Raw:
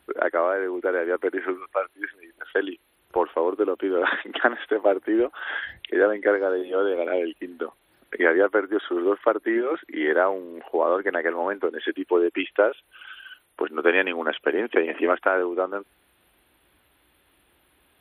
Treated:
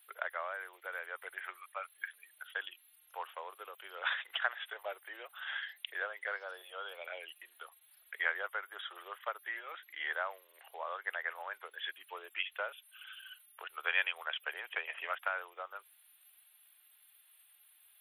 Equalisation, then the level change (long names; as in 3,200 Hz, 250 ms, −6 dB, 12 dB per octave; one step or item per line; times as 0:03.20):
high-pass filter 590 Hz 24 dB per octave
first difference
+2.5 dB